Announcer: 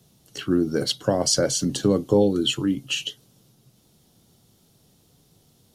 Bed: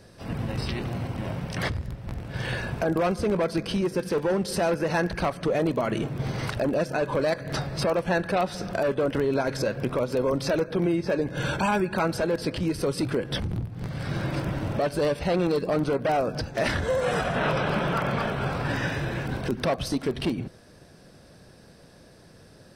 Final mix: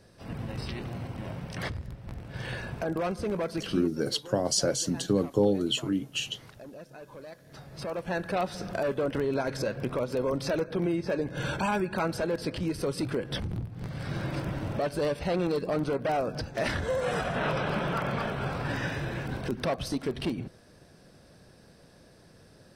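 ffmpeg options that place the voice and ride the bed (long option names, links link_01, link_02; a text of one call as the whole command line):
ffmpeg -i stem1.wav -i stem2.wav -filter_complex "[0:a]adelay=3250,volume=-5.5dB[link_01];[1:a]volume=10.5dB,afade=type=out:start_time=3.66:duration=0.29:silence=0.188365,afade=type=in:start_time=7.54:duration=0.88:silence=0.149624[link_02];[link_01][link_02]amix=inputs=2:normalize=0" out.wav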